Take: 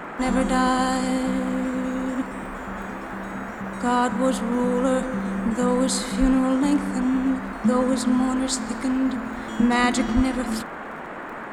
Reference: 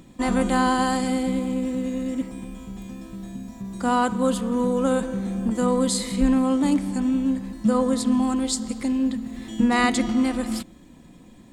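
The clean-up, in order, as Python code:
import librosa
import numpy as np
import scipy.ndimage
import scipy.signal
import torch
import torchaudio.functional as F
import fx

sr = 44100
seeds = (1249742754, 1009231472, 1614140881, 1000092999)

y = fx.fix_declick_ar(x, sr, threshold=6.5)
y = fx.highpass(y, sr, hz=140.0, slope=24, at=(10.15, 10.27), fade=0.02)
y = fx.noise_reduce(y, sr, print_start_s=10.66, print_end_s=11.16, reduce_db=7.0)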